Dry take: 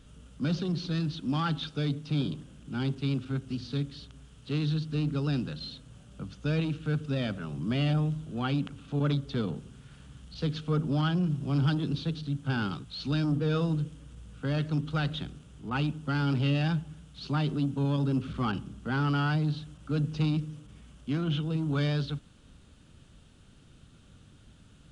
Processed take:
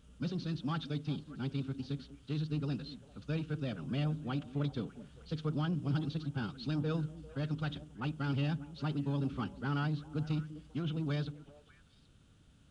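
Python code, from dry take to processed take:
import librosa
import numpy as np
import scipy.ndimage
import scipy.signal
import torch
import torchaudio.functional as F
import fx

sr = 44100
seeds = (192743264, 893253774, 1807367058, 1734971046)

y = fx.stretch_vocoder(x, sr, factor=0.51)
y = fx.echo_stepped(y, sr, ms=198, hz=250.0, octaves=1.4, feedback_pct=70, wet_db=-10.5)
y = y * 10.0 ** (-6.0 / 20.0)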